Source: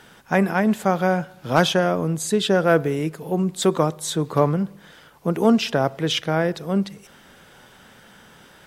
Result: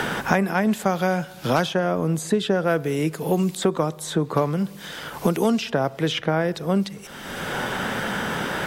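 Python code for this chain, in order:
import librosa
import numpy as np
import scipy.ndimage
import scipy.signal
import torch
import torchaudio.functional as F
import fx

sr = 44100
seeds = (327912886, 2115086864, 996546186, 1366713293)

y = fx.band_squash(x, sr, depth_pct=100)
y = y * 10.0 ** (-2.0 / 20.0)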